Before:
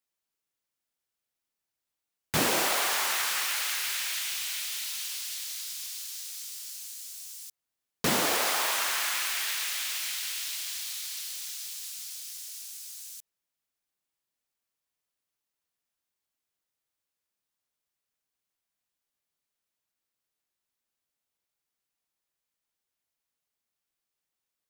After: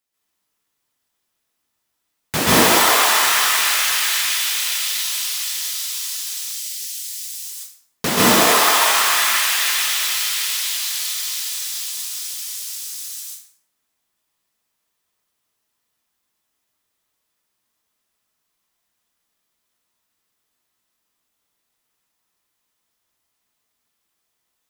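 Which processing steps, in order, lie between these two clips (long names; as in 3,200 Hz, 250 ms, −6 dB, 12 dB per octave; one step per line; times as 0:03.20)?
0:06.38–0:07.33: Butterworth high-pass 1,700 Hz 36 dB per octave
dense smooth reverb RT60 0.67 s, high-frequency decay 0.7×, pre-delay 120 ms, DRR −7.5 dB
level +5 dB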